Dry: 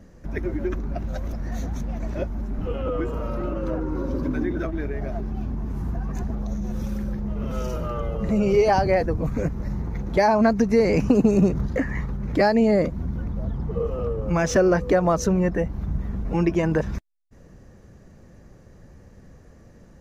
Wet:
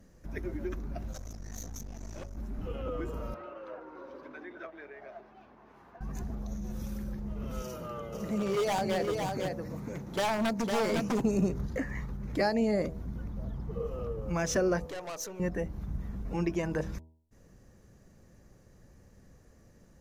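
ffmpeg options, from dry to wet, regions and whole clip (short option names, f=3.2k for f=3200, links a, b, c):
-filter_complex "[0:a]asettb=1/sr,asplit=3[a][b][c];[a]atrim=end=1.124[d];[b]atrim=start=1.12:end=2.37,asetpts=PTS-STARTPTS,afade=t=in:d=0.004:c=qsin,afade=t=out:st=1.246:d=0.004:c=qsin,equalizer=f=6.3k:t=o:w=0.78:g=13.5,aeval=exprs='(tanh(28.2*val(0)+0.75)-tanh(0.75))/28.2':c=same[e];[c]atrim=start=2.366[f];[d][e]acrossfade=d=0.004:c1=hsin:c2=qsin[g];[g][f]acrossfade=d=0.004:c1=qsin:c2=hsin,asettb=1/sr,asplit=3[h][i][j];[h]atrim=end=3.344[k];[i]atrim=start=3.34:end=6.01,asetpts=PTS-STARTPTS,afade=t=in:d=0.004:c=qsin,afade=t=out:st=2.666:d=0.004:c=qsin,highpass=f=250:p=1,acrossover=split=430 3700:gain=0.112 1 0.0794[l][m][n];[l][m][n]amix=inputs=3:normalize=0[o];[j]atrim=start=6.006[p];[k][o]acrossfade=d=0.004:c1=hsin:c2=qsin[q];[q][p]acrossfade=d=0.004:c1=qsin:c2=hsin,asettb=1/sr,asplit=3[r][s][t];[r]atrim=end=7.624[u];[s]atrim=start=7.62:end=11.21,asetpts=PTS-STARTPTS,afade=t=in:d=0.004:c=qsin,afade=t=out:st=3.586:d=0.004:c=qsin,highpass=130,aeval=exprs='0.178*(abs(mod(val(0)/0.178+3,4)-2)-1)':c=same,aecho=1:1:505:0.596,atrim=end_sample=158319[v];[t]atrim=start=11.206[w];[u][v]acrossfade=d=0.004:c1=hsin:c2=qsin[x];[x][w]acrossfade=d=0.004:c1=qsin:c2=hsin,asettb=1/sr,asplit=3[y][z][aa];[y]atrim=end=14.864[ab];[z]atrim=start=14.86:end=15.4,asetpts=PTS-STARTPTS,afade=t=in:d=0.004:c=qsin,afade=t=out:st=0.536:d=0.004:c=qsin,highpass=500,aeval=exprs='(tanh(22.4*val(0)+0.35)-tanh(0.35))/22.4':c=same[ac];[aa]atrim=start=15.396[ad];[ab][ac]acrossfade=d=0.004:c1=hsin:c2=qsin[ae];[ae][ad]acrossfade=d=0.004:c1=qsin:c2=hsin,aemphasis=mode=production:type=cd,bandreject=f=79.95:t=h:w=4,bandreject=f=159.9:t=h:w=4,bandreject=f=239.85:t=h:w=4,bandreject=f=319.8:t=h:w=4,bandreject=f=399.75:t=h:w=4,bandreject=f=479.7:t=h:w=4,bandreject=f=559.65:t=h:w=4,bandreject=f=639.6:t=h:w=4,bandreject=f=719.55:t=h:w=4,bandreject=f=799.5:t=h:w=4,bandreject=f=879.45:t=h:w=4,bandreject=f=959.4:t=h:w=4,volume=-9dB"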